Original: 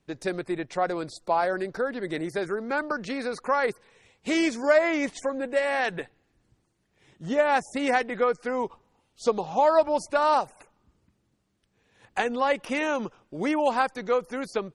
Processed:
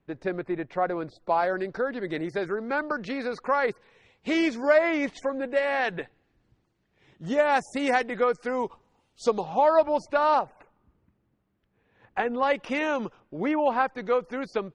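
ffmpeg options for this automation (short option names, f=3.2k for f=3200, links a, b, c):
-af "asetnsamples=n=441:p=0,asendcmd='1.29 lowpass f 4300;7.26 lowpass f 8900;9.44 lowpass f 3800;10.39 lowpass f 2100;12.43 lowpass f 4800;13.2 lowpass f 2500;13.98 lowpass f 4000',lowpass=2.2k"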